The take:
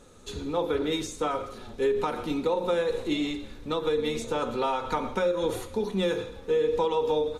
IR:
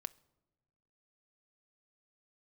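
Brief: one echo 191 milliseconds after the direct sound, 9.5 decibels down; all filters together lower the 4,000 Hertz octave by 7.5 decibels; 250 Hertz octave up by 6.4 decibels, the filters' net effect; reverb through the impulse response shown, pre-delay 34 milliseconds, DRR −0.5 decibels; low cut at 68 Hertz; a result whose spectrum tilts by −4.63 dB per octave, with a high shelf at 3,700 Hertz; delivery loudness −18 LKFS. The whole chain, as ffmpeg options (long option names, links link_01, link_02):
-filter_complex "[0:a]highpass=68,equalizer=frequency=250:width_type=o:gain=8.5,highshelf=frequency=3700:gain=-8.5,equalizer=frequency=4000:width_type=o:gain=-4,aecho=1:1:191:0.335,asplit=2[link_01][link_02];[1:a]atrim=start_sample=2205,adelay=34[link_03];[link_02][link_03]afir=irnorm=-1:irlink=0,volume=3.5dB[link_04];[link_01][link_04]amix=inputs=2:normalize=0,volume=4.5dB"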